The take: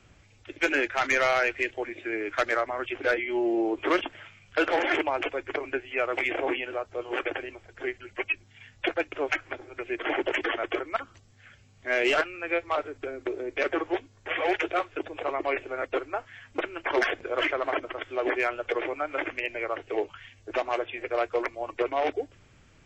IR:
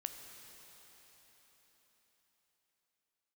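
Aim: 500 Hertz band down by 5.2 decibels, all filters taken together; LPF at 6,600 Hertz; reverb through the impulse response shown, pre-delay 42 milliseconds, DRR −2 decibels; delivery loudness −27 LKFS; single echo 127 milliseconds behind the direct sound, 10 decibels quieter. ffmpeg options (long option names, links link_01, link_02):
-filter_complex "[0:a]lowpass=6600,equalizer=frequency=500:width_type=o:gain=-7,aecho=1:1:127:0.316,asplit=2[link_01][link_02];[1:a]atrim=start_sample=2205,adelay=42[link_03];[link_02][link_03]afir=irnorm=-1:irlink=0,volume=3.5dB[link_04];[link_01][link_04]amix=inputs=2:normalize=0,volume=-0.5dB"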